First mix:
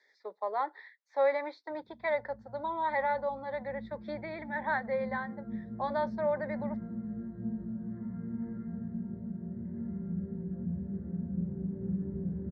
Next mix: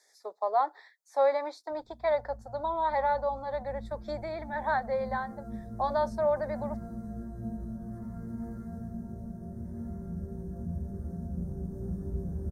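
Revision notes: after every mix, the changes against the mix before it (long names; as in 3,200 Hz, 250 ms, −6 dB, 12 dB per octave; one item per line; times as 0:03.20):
background: remove high-frequency loss of the air 300 metres
master: remove loudspeaker in its box 130–3,800 Hz, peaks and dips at 190 Hz +7 dB, 710 Hz −10 dB, 1,200 Hz −5 dB, 2,000 Hz +7 dB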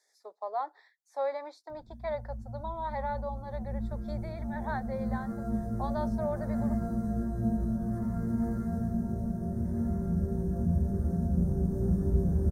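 speech −7.0 dB
background +8.0 dB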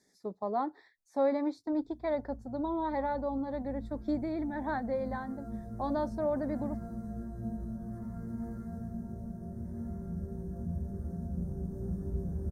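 speech: remove high-pass filter 560 Hz 24 dB per octave
background −8.5 dB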